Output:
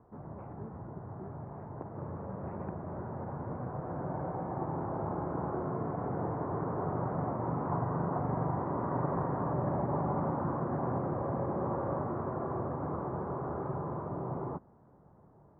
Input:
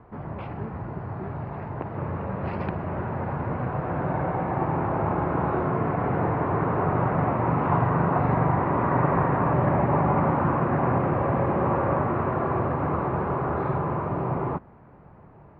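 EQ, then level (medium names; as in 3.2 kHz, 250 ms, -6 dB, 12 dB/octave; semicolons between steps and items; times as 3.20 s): Gaussian low-pass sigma 6.3 samples; bass shelf 94 Hz -6.5 dB; -8.0 dB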